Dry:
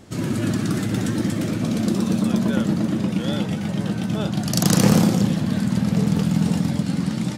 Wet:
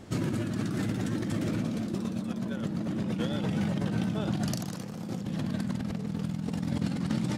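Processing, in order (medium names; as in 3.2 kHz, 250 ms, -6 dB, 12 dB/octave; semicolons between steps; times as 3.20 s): treble shelf 4.5 kHz -5.5 dB; compressor with a negative ratio -26 dBFS, ratio -1; trim -5.5 dB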